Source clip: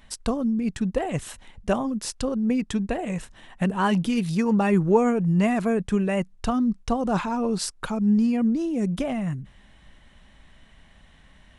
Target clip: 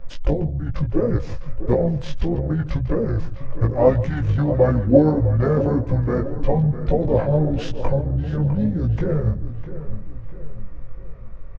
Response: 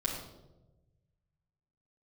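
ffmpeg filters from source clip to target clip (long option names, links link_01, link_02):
-filter_complex "[0:a]asplit=2[link_01][link_02];[link_02]aecho=0:1:150:0.141[link_03];[link_01][link_03]amix=inputs=2:normalize=0,acrossover=split=420[link_04][link_05];[link_04]acompressor=threshold=-33dB:ratio=8[link_06];[link_06][link_05]amix=inputs=2:normalize=0,aemphasis=mode=reproduction:type=riaa,asplit=4[link_07][link_08][link_09][link_10];[link_08]asetrate=22050,aresample=44100,atempo=2,volume=-7dB[link_11];[link_09]asetrate=37084,aresample=44100,atempo=1.18921,volume=-17dB[link_12];[link_10]asetrate=55563,aresample=44100,atempo=0.793701,volume=-12dB[link_13];[link_07][link_11][link_12][link_13]amix=inputs=4:normalize=0,equalizer=frequency=840:width_type=o:width=0.23:gain=12.5,asetrate=27781,aresample=44100,atempo=1.5874,flanger=delay=17:depth=3.2:speed=1.7,asplit=2[link_14][link_15];[link_15]adelay=654,lowpass=frequency=4000:poles=1,volume=-13dB,asplit=2[link_16][link_17];[link_17]adelay=654,lowpass=frequency=4000:poles=1,volume=0.45,asplit=2[link_18][link_19];[link_19]adelay=654,lowpass=frequency=4000:poles=1,volume=0.45,asplit=2[link_20][link_21];[link_21]adelay=654,lowpass=frequency=4000:poles=1,volume=0.45[link_22];[link_16][link_18][link_20][link_22]amix=inputs=4:normalize=0[link_23];[link_14][link_23]amix=inputs=2:normalize=0,volume=6dB"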